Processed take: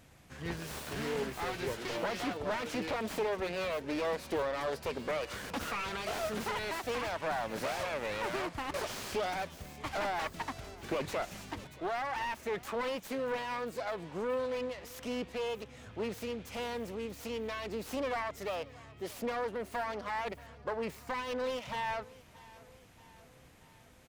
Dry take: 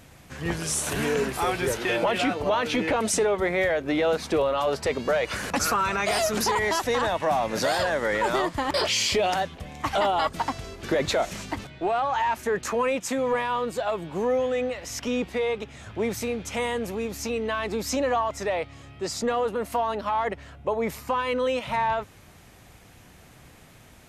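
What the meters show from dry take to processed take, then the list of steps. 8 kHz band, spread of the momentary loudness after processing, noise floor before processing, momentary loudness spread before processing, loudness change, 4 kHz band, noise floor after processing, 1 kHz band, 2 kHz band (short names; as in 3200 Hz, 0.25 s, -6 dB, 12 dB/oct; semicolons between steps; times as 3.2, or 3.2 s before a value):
-16.0 dB, 7 LU, -51 dBFS, 7 LU, -10.5 dB, -11.5 dB, -58 dBFS, -11.0 dB, -9.5 dB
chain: self-modulated delay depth 0.31 ms; feedback echo 0.629 s, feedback 57%, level -21.5 dB; slew limiter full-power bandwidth 130 Hz; gain -9 dB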